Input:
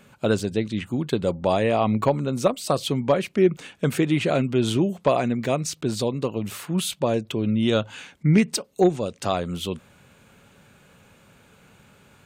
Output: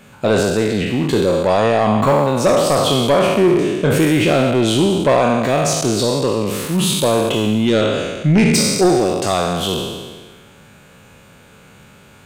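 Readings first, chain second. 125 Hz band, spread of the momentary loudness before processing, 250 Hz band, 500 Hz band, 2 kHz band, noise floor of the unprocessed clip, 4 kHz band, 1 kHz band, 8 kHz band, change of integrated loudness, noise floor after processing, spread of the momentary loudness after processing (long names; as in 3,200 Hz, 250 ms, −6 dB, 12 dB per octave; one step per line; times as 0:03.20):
+6.5 dB, 7 LU, +7.0 dB, +8.5 dB, +10.0 dB, −56 dBFS, +11.0 dB, +9.0 dB, +11.5 dB, +8.0 dB, −45 dBFS, 5 LU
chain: peak hold with a decay on every bin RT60 1.47 s
soft clipping −12.5 dBFS, distortion −15 dB
level +6 dB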